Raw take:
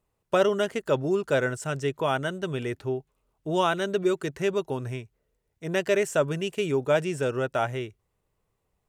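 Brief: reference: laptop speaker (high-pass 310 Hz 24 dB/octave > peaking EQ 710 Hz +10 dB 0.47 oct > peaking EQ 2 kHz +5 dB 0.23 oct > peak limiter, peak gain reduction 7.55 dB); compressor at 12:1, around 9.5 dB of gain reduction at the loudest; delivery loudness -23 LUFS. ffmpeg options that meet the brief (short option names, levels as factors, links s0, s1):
-af "acompressor=threshold=0.0447:ratio=12,highpass=f=310:w=0.5412,highpass=f=310:w=1.3066,equalizer=f=710:t=o:w=0.47:g=10,equalizer=f=2000:t=o:w=0.23:g=5,volume=3.16,alimiter=limit=0.299:level=0:latency=1"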